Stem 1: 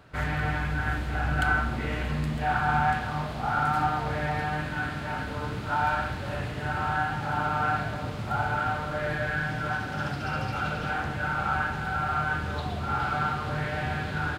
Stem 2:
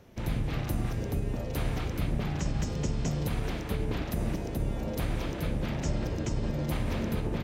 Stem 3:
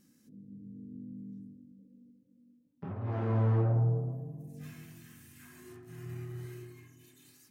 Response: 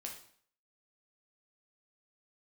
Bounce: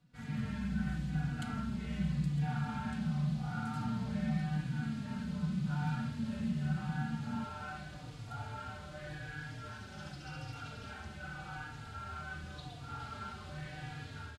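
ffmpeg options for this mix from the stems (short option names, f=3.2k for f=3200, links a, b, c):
-filter_complex "[0:a]lowpass=8.4k,equalizer=f=1.1k:w=0.32:g=-7.5,volume=-16dB[a];[1:a]volume=-1dB[b];[2:a]adelay=100,volume=2dB[c];[b][c]amix=inputs=2:normalize=0,asuperpass=centerf=180:order=12:qfactor=1.7,alimiter=level_in=8dB:limit=-24dB:level=0:latency=1:release=215,volume=-8dB,volume=0dB[d];[a][d]amix=inputs=2:normalize=0,highshelf=f=3.1k:g=9.5,dynaudnorm=f=180:g=3:m=7dB,asplit=2[e][f];[f]adelay=3.6,afreqshift=-0.87[g];[e][g]amix=inputs=2:normalize=1"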